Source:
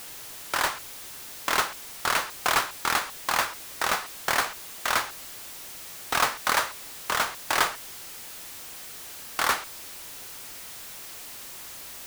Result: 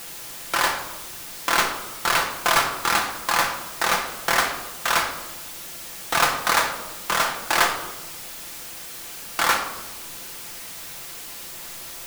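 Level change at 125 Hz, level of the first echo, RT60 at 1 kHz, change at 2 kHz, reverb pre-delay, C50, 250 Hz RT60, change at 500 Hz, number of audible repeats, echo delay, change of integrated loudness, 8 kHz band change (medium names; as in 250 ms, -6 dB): +6.0 dB, no echo, 1.0 s, +4.5 dB, 6 ms, 7.5 dB, 1.4 s, +5.5 dB, no echo, no echo, +4.5 dB, +4.0 dB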